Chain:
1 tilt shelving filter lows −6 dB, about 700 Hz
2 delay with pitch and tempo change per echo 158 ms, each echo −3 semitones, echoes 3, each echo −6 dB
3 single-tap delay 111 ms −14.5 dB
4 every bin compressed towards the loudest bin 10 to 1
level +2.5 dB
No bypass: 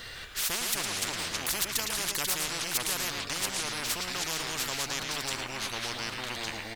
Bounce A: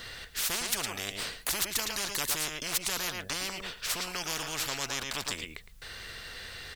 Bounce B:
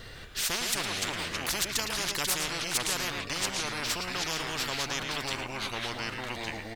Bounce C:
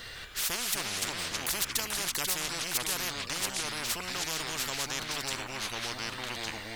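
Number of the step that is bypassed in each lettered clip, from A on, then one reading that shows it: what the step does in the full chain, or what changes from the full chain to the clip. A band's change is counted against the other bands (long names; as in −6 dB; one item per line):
2, change in crest factor +2.0 dB
1, 8 kHz band −3.5 dB
3, change in integrated loudness −1.0 LU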